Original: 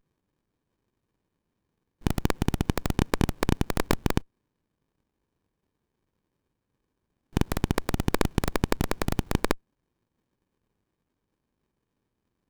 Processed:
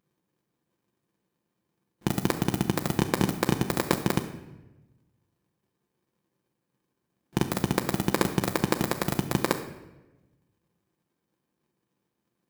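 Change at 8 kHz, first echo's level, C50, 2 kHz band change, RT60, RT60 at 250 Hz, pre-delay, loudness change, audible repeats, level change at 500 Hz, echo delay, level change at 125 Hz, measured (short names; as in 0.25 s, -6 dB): +3.0 dB, none, 10.5 dB, +1.0 dB, 1.1 s, 1.3 s, 6 ms, +0.5 dB, none, +1.0 dB, none, -1.0 dB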